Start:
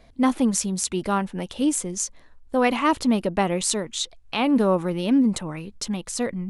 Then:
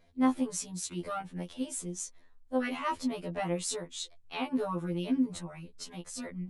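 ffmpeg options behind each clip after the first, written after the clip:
-af "afftfilt=real='re*2*eq(mod(b,4),0)':imag='im*2*eq(mod(b,4),0)':win_size=2048:overlap=0.75,volume=0.355"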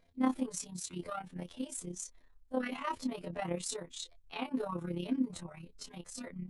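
-af "tremolo=f=33:d=0.621,volume=0.841"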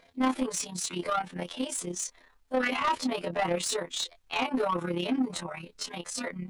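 -filter_complex "[0:a]asplit=2[s0][s1];[s1]highpass=f=720:p=1,volume=12.6,asoftclip=type=tanh:threshold=0.15[s2];[s0][s2]amix=inputs=2:normalize=0,lowpass=f=4600:p=1,volume=0.501"

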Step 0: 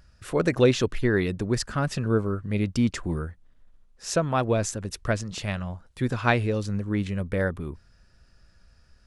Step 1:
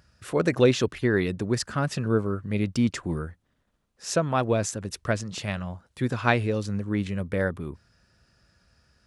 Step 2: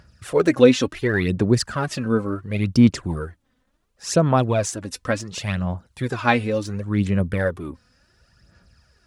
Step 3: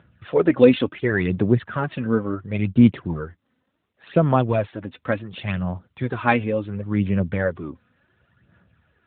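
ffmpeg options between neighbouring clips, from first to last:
-af "highpass=84"
-af "aphaser=in_gain=1:out_gain=1:delay=4:decay=0.56:speed=0.7:type=sinusoidal,volume=1.33"
-ar 8000 -c:a libopencore_amrnb -b:a 12200

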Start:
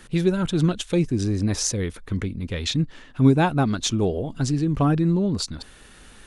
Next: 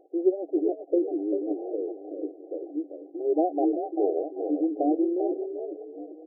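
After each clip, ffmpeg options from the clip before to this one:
-filter_complex "[0:a]acrusher=samples=5:mix=1:aa=0.000001,asplit=5[s0][s1][s2][s3][s4];[s1]adelay=391,afreqshift=49,volume=0.398[s5];[s2]adelay=782,afreqshift=98,volume=0.135[s6];[s3]adelay=1173,afreqshift=147,volume=0.0462[s7];[s4]adelay=1564,afreqshift=196,volume=0.0157[s8];[s0][s5][s6][s7][s8]amix=inputs=5:normalize=0,afftfilt=real='re*between(b*sr/4096,280,800)':imag='im*between(b*sr/4096,280,800)':win_size=4096:overlap=0.75"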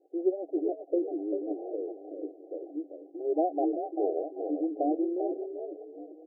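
-af "adynamicequalizer=threshold=0.01:dfrequency=660:dqfactor=2.3:tfrequency=660:tqfactor=2.3:attack=5:release=100:ratio=0.375:range=2:mode=boostabove:tftype=bell,volume=0.562"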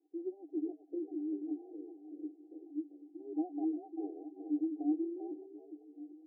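-filter_complex "[0:a]asplit=3[s0][s1][s2];[s0]bandpass=f=300:t=q:w=8,volume=1[s3];[s1]bandpass=f=870:t=q:w=8,volume=0.501[s4];[s2]bandpass=f=2240:t=q:w=8,volume=0.355[s5];[s3][s4][s5]amix=inputs=3:normalize=0,volume=0.891"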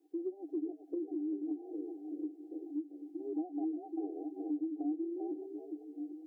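-af "acompressor=threshold=0.00708:ratio=3,volume=2.24"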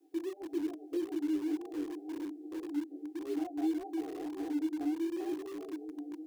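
-filter_complex "[0:a]flanger=delay=17.5:depth=5.6:speed=1.8,acrossover=split=250|370|420[s0][s1][s2][s3];[s2]aeval=exprs='(mod(750*val(0)+1,2)-1)/750':c=same[s4];[s0][s1][s4][s3]amix=inputs=4:normalize=0,volume=2.37"

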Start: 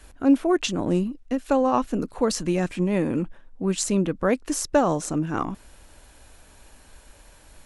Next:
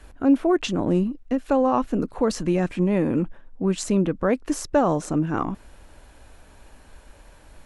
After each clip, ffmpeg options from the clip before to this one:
-filter_complex "[0:a]highshelf=f=3300:g=-9.5,asplit=2[s0][s1];[s1]alimiter=limit=0.158:level=0:latency=1:release=68,volume=1.06[s2];[s0][s2]amix=inputs=2:normalize=0,volume=0.668"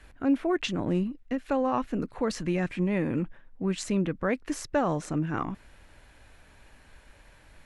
-af "equalizer=f=125:t=o:w=1:g=5,equalizer=f=2000:t=o:w=1:g=8,equalizer=f=4000:t=o:w=1:g=3,volume=0.422"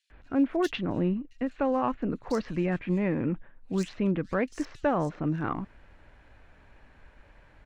-filter_complex "[0:a]adynamicsmooth=sensitivity=4:basefreq=3800,acrossover=split=3900[s0][s1];[s0]adelay=100[s2];[s2][s1]amix=inputs=2:normalize=0"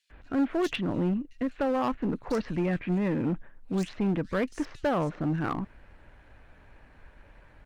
-filter_complex "[0:a]asplit=2[s0][s1];[s1]aeval=exprs='0.0447*(abs(mod(val(0)/0.0447+3,4)-2)-1)':c=same,volume=0.562[s2];[s0][s2]amix=inputs=2:normalize=0,volume=0.841" -ar 48000 -c:a libopus -b:a 48k

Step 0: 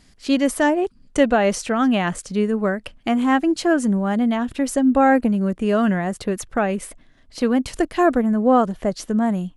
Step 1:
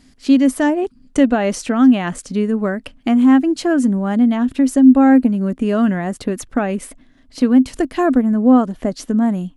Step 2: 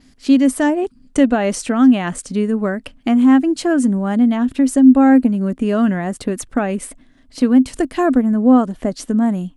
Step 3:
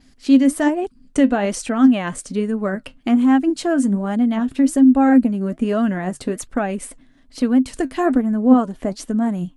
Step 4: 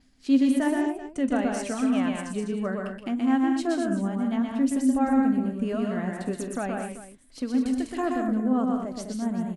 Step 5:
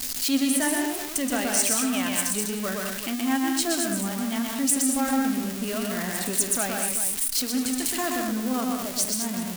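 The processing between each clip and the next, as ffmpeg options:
-filter_complex "[0:a]equalizer=f=260:t=o:w=0.35:g=12,asplit=2[s0][s1];[s1]acompressor=threshold=0.158:ratio=6,volume=0.841[s2];[s0][s2]amix=inputs=2:normalize=0,volume=0.596"
-af "adynamicequalizer=threshold=0.00355:dfrequency=8600:dqfactor=3:tfrequency=8600:tqfactor=3:attack=5:release=100:ratio=0.375:range=3:mode=boostabove:tftype=bell"
-af "flanger=delay=1.2:depth=6.5:regen=68:speed=1.2:shape=sinusoidal,volume=1.26"
-filter_complex "[0:a]tremolo=f=3:d=0.5,asplit=2[s0][s1];[s1]aecho=0:1:47|124|162|202|229|386:0.112|0.708|0.282|0.422|0.299|0.168[s2];[s0][s2]amix=inputs=2:normalize=0,volume=0.398"
-af "aeval=exprs='val(0)+0.5*0.02*sgn(val(0))':c=same,crystalizer=i=9:c=0,flanger=delay=8.5:depth=9.6:regen=-85:speed=0.29:shape=sinusoidal"

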